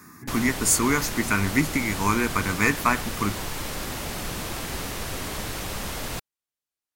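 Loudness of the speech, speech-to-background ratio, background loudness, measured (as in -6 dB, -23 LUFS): -24.0 LUFS, 7.5 dB, -31.5 LUFS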